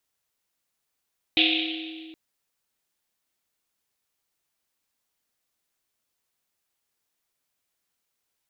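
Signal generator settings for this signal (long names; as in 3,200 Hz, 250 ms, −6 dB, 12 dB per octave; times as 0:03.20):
drum after Risset length 0.77 s, pitch 320 Hz, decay 2.74 s, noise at 3,100 Hz, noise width 1,500 Hz, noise 60%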